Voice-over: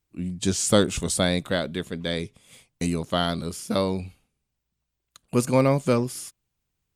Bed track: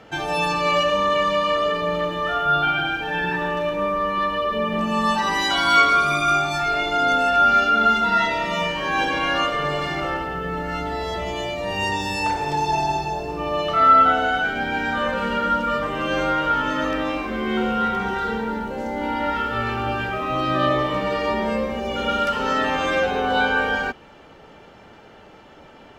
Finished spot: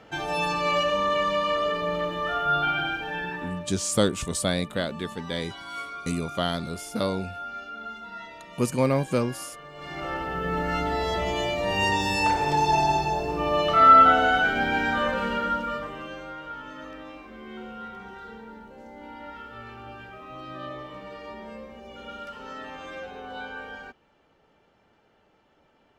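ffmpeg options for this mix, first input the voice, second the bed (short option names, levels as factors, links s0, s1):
-filter_complex "[0:a]adelay=3250,volume=0.708[s0];[1:a]volume=6.68,afade=t=out:st=2.88:d=0.86:silence=0.149624,afade=t=in:st=9.74:d=0.84:silence=0.0891251,afade=t=out:st=14.63:d=1.56:silence=0.133352[s1];[s0][s1]amix=inputs=2:normalize=0"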